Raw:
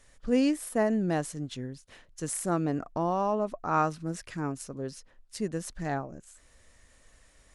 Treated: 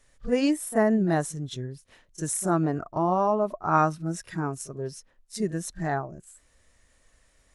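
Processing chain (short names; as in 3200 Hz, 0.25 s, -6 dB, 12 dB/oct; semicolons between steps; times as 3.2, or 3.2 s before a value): spectral noise reduction 8 dB; pre-echo 32 ms -14 dB; gain +4.5 dB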